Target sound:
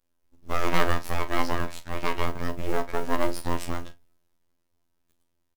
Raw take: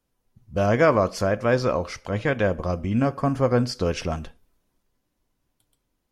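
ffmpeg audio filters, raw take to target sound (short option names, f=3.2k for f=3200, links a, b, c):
-filter_complex "[0:a]aeval=exprs='abs(val(0))':c=same,atempo=1.1,afftfilt=real='hypot(re,im)*cos(PI*b)':imag='0':win_size=2048:overlap=0.75,acrusher=bits=7:mode=log:mix=0:aa=0.000001,asplit=2[a][b];[b]adelay=38,volume=-12.5dB[c];[a][c]amix=inputs=2:normalize=0,volume=1dB"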